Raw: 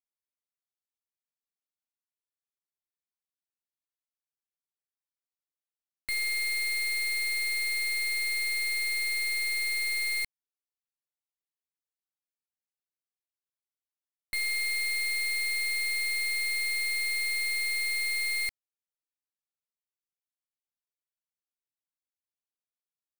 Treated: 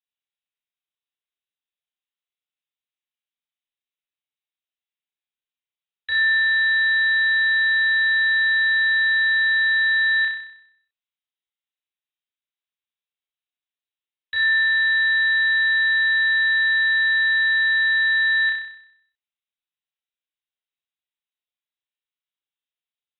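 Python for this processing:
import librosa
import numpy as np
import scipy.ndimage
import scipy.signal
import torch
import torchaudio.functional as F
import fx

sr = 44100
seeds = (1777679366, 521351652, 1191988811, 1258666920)

y = fx.env_lowpass(x, sr, base_hz=1600.0, full_db=-28.5)
y = fx.freq_invert(y, sr, carrier_hz=3900)
y = fx.room_flutter(y, sr, wall_m=5.4, rt60_s=0.68)
y = y * librosa.db_to_amplitude(5.5)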